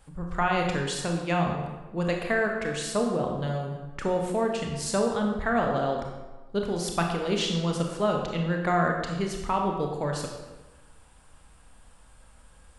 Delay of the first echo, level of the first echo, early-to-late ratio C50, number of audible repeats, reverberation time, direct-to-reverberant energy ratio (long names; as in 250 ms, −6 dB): no echo audible, no echo audible, 3.5 dB, no echo audible, 1.2 s, 1.5 dB